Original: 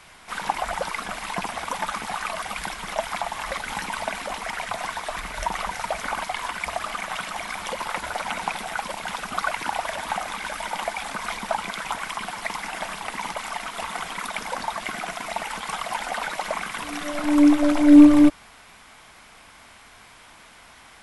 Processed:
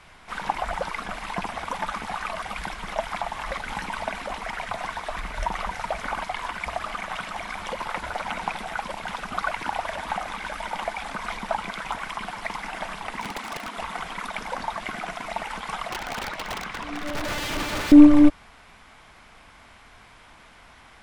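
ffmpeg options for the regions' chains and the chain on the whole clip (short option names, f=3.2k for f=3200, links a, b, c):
-filter_complex "[0:a]asettb=1/sr,asplit=3[a][b][c];[a]atrim=end=13.214[d];[b]atrim=start=13.21:end=13.77,asetpts=PTS-STARTPTS,afade=t=in:d=0.004:c=qsin,afade=t=out:st=0.556:d=0.004:c=qsin,highpass=f=41:w=0.5412,highpass=f=41:w=1.3066,lowshelf=f=160:t=q:w=3:g=-12.5,aeval=exprs='(mod(12.6*val(0)+1,2)-1)/12.6':c=same[e];[c]atrim=start=13.766[f];[d][e]acrossfade=d=0.004:c1=hsin:c2=qsin[g];[g][f]acrossfade=d=0.004:c1=qsin:c2=hsin,asettb=1/sr,asplit=3[h][i][j];[h]atrim=end=15.894[k];[i]atrim=start=15.89:end=17.92,asetpts=PTS-STARTPTS,afade=t=in:d=0.004:c=qsin,afade=t=out:st=2.026:d=0.004:c=qsin,acrossover=split=6600[l][m];[m]acompressor=threshold=-57dB:ratio=4:attack=1:release=60[n];[l][n]amix=inputs=2:normalize=0,aeval=exprs='(mod(11.9*val(0)+1,2)-1)/11.9':c=same[o];[j]atrim=start=17.916[p];[k][o]acrossfade=d=0.004:c1=hsin:c2=qsin[q];[q][p]acrossfade=d=0.004:c1=qsin:c2=hsin,lowpass=f=3.6k:p=1,lowshelf=f=100:g=7,volume=-1dB"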